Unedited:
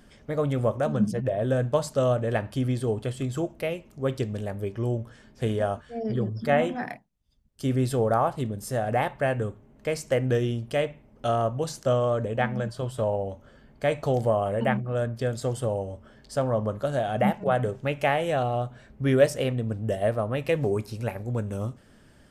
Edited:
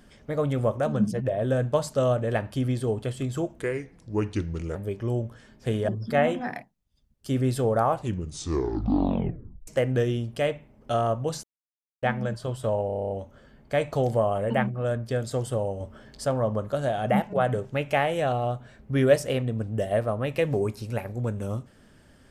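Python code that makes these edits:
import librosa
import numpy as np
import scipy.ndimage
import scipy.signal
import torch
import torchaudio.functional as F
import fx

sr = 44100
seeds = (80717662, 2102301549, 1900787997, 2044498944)

y = fx.edit(x, sr, fx.speed_span(start_s=3.59, length_s=0.92, speed=0.79),
    fx.cut(start_s=5.64, length_s=0.59),
    fx.tape_stop(start_s=8.21, length_s=1.81),
    fx.silence(start_s=11.78, length_s=0.59),
    fx.stutter(start_s=13.21, slice_s=0.03, count=9),
    fx.clip_gain(start_s=15.91, length_s=0.44, db=4.0), tone=tone)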